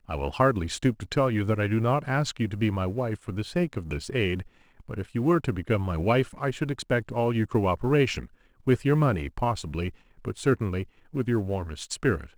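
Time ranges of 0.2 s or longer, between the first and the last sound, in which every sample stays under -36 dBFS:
4.42–4.89
8.26–8.67
9.9–10.25
10.83–11.14

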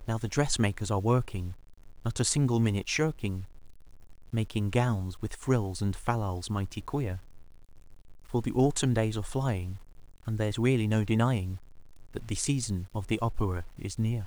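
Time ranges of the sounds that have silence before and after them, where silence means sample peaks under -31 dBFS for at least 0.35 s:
2.05–3.4
4.34–7.17
8.34–9.73
10.28–11.55

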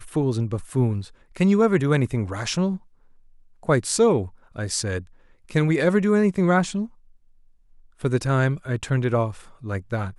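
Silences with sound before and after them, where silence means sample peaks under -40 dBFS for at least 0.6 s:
2.77–3.63
6.87–8

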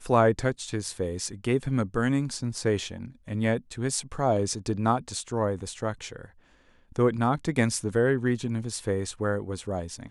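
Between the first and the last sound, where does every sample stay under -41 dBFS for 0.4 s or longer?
6.26–6.92

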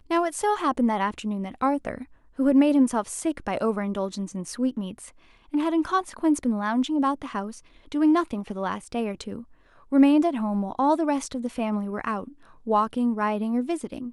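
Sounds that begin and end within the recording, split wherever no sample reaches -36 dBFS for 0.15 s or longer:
2.39–5.08
5.54–7.58
7.92–9.42
9.92–12.28

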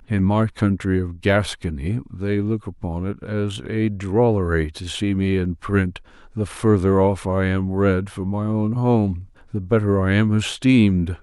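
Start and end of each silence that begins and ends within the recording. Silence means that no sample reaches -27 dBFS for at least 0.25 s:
5.96–6.36
9.2–9.54

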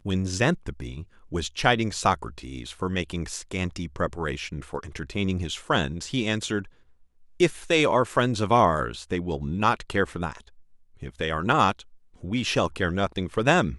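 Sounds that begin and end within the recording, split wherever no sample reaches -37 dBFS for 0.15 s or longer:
1.32–6.65
7.4–10.41
11.02–11.81

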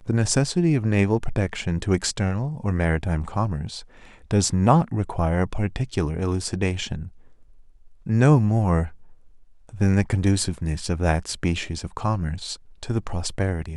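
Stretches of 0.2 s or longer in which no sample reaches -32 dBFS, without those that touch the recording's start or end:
3.8–4.31
7.07–8.07
8.89–9.69
12.55–12.83

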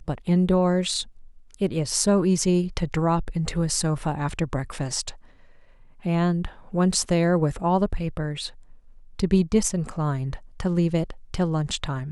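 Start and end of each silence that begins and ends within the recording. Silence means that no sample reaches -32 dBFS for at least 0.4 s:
1.03–1.54
5.1–6.05
8.48–9.19

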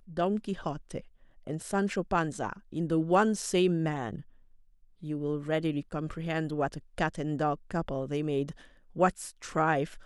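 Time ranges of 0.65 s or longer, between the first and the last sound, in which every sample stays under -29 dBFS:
4.16–5.09

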